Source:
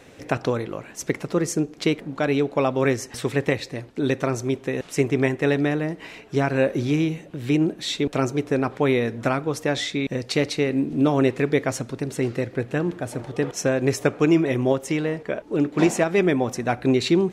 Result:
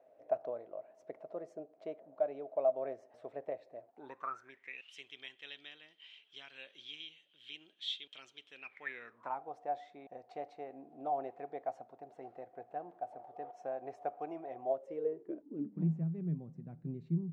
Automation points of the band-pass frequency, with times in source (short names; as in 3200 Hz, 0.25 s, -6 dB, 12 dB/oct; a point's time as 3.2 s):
band-pass, Q 15
3.84 s 640 Hz
4.95 s 3200 Hz
8.51 s 3200 Hz
9.45 s 730 Hz
14.65 s 730 Hz
15.92 s 160 Hz